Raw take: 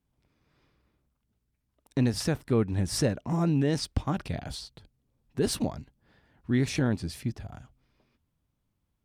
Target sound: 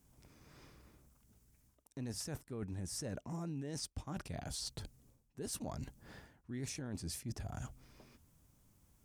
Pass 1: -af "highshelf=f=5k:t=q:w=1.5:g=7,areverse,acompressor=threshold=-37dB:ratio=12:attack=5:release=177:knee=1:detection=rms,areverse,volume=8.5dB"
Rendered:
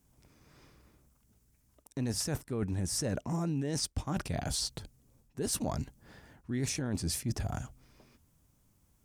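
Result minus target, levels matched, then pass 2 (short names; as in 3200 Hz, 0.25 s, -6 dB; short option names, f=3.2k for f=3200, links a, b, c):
compressor: peak gain reduction -9 dB
-af "highshelf=f=5k:t=q:w=1.5:g=7,areverse,acompressor=threshold=-47dB:ratio=12:attack=5:release=177:knee=1:detection=rms,areverse,volume=8.5dB"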